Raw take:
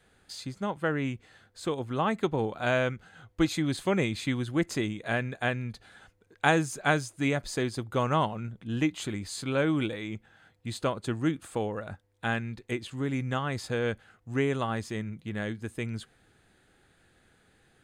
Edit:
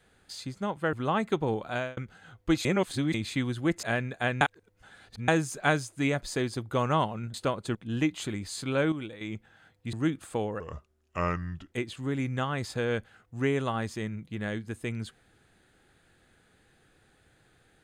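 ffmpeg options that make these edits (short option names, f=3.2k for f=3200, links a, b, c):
-filter_complex "[0:a]asplit=15[a][b][c][d][e][f][g][h][i][j][k][l][m][n][o];[a]atrim=end=0.932[p];[b]atrim=start=1.838:end=2.88,asetpts=PTS-STARTPTS,afade=t=out:st=0.722:d=0.32[q];[c]atrim=start=2.88:end=3.562,asetpts=PTS-STARTPTS,afade=t=in:d=0.004:c=hsin[r];[d]atrim=start=3.558:end=4.052,asetpts=PTS-STARTPTS,areverse[s];[e]atrim=start=4.048:end=4.742[t];[f]atrim=start=5.038:end=5.622[u];[g]atrim=start=5.618:end=6.492,asetpts=PTS-STARTPTS,areverse[v];[h]atrim=start=6.488:end=8.552[w];[i]atrim=start=10.728:end=11.142[x];[j]atrim=start=8.548:end=9.722[y];[k]atrim=start=9.718:end=10.012,asetpts=PTS-STARTPTS,volume=-8.5dB[z];[l]atrim=start=10.008:end=10.732[aa];[m]atrim=start=11.138:end=11.814[ab];[n]atrim=start=11.81:end=12.66,asetpts=PTS-STARTPTS,asetrate=33516,aresample=44100,atrim=end_sample=49322,asetpts=PTS-STARTPTS[ac];[o]atrim=start=12.656[ad];[q][r]concat=n=2:v=0:a=1[ae];[p][ae]acrossfade=d=0.004:c1=hsin:c2=hsin[af];[af][s]acrossfade=d=0.004:c1=hsin:c2=hsin[ag];[ag][t]acrossfade=d=0.004:c1=hsin:c2=hsin[ah];[ah][u]acrossfade=d=0.004:c1=hsin:c2=hsin[ai];[ai][v]acrossfade=d=0.004:c1=hsin:c2=hsin[aj];[aj][w]acrossfade=d=0.004:c1=hsin:c2=hsin[ak];[ak][x]acrossfade=d=0.004:c1=hsin:c2=hsin[al];[al][y]acrossfade=d=0.004:c1=hsin:c2=hsin[am];[am][z]acrossfade=d=0.004:c1=hsin:c2=hsin[an];[an][aa]acrossfade=d=0.004:c1=hsin:c2=hsin[ao];[ao][ab]acrossfade=d=0.004:c1=hsin:c2=hsin[ap];[ap][ac]acrossfade=d=0.004:c1=hsin:c2=hsin[aq];[aq][ad]acrossfade=d=0.004:c1=hsin:c2=hsin"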